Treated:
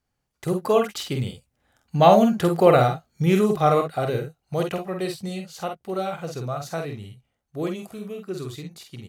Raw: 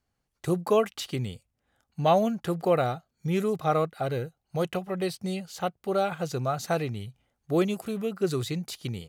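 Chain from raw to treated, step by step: Doppler pass-by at 2.71 s, 9 m/s, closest 11 m; early reflections 48 ms -5.5 dB, 62 ms -12.5 dB; trim +7.5 dB

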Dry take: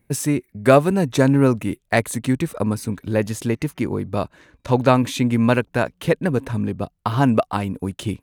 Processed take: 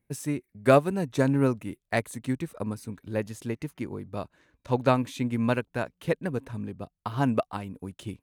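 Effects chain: upward expansion 1.5:1, over -24 dBFS; trim -5.5 dB

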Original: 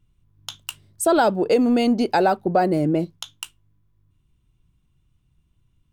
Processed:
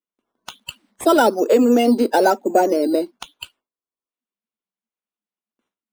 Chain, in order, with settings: coarse spectral quantiser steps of 30 dB; gate with hold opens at -51 dBFS; elliptic high-pass 230 Hz, stop band 40 dB; treble shelf 7.5 kHz -10.5 dB; in parallel at -3 dB: decimation with a swept rate 8×, swing 60% 1.1 Hz

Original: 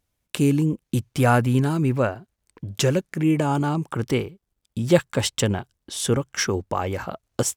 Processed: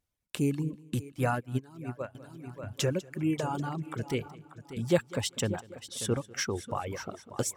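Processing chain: multi-head delay 196 ms, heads first and third, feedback 44%, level -12.5 dB; reverb removal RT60 1.2 s; 1.12–2.15 s: upward expansion 2.5:1, over -27 dBFS; trim -8 dB

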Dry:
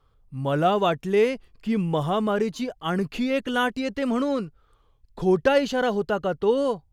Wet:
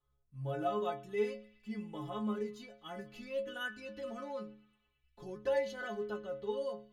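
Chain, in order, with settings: inharmonic resonator 63 Hz, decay 0.8 s, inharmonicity 0.03; band-passed feedback delay 110 ms, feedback 83%, band-pass 2.6 kHz, level -21.5 dB; trim -4.5 dB

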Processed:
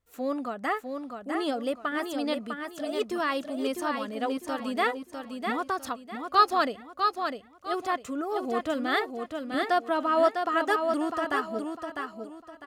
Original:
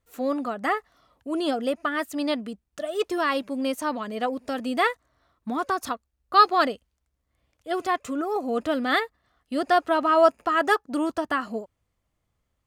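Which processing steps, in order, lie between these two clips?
9.54–10.89 s: Chebyshev high-pass 180 Hz, order 2; feedback delay 652 ms, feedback 31%, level -5.5 dB; trim -4 dB

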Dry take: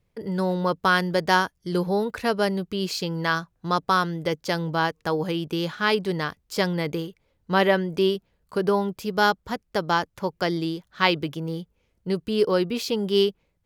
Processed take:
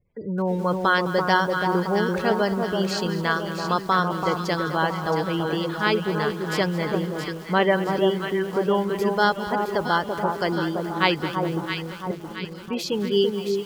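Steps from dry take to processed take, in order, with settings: 12.11–12.68 s: amplifier tone stack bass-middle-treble 6-0-2; spectral gate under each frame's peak -25 dB strong; echo whose repeats swap between lows and highs 335 ms, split 1.2 kHz, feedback 70%, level -4 dB; bit-crushed delay 211 ms, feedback 55%, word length 6-bit, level -13 dB

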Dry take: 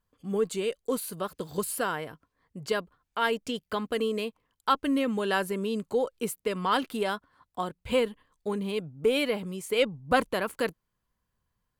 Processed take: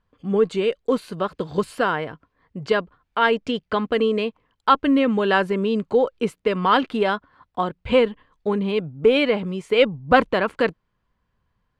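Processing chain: low-pass 3.3 kHz 12 dB/octave; trim +8.5 dB

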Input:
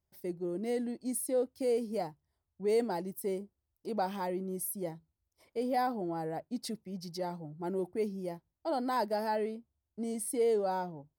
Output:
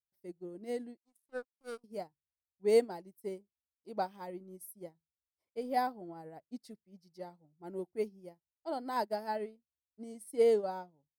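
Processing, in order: 0.97–1.84 s: power-law waveshaper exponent 3; upward expansion 2.5:1, over -45 dBFS; trim +4.5 dB

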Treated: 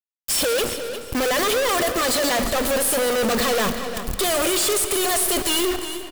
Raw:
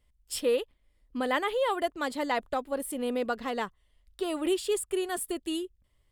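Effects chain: gate with hold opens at -55 dBFS; tone controls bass -2 dB, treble +12 dB; hum notches 60/120/180/240/300/360 Hz; comb 1.7 ms, depth 61%; wow and flutter 29 cents; companded quantiser 4-bit; fuzz box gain 53 dB, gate -50 dBFS; feedback delay 354 ms, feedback 23%, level -21 dB; hard clipper -24.5 dBFS, distortion -9 dB; on a send at -9 dB: reverberation RT60 2.5 s, pre-delay 40 ms; on the sum: trim +4 dB

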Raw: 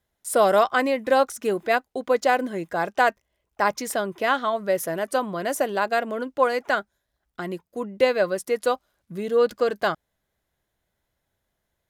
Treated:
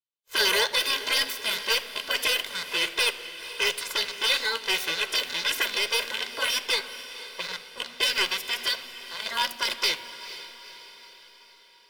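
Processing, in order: rattle on loud lows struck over -38 dBFS, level -24 dBFS; level-controlled noise filter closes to 1.7 kHz, open at -18 dBFS; high-pass 790 Hz 12 dB/octave; spectral gate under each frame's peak -15 dB weak; formant shift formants +3 st; dynamic bell 1 kHz, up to -5 dB, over -51 dBFS, Q 1.1; waveshaping leveller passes 3; echo that smears into a reverb 474 ms, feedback 53%, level -13.5 dB; reverberation RT60 0.75 s, pre-delay 4 ms, DRR 13.5 dB; trim +1.5 dB

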